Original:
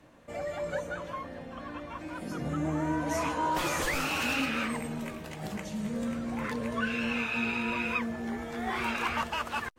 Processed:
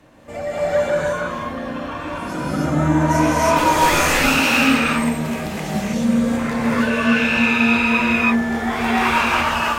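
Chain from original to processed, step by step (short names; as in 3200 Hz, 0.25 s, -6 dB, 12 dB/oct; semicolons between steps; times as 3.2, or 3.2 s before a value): non-linear reverb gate 0.35 s rising, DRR -6.5 dB; gain +6.5 dB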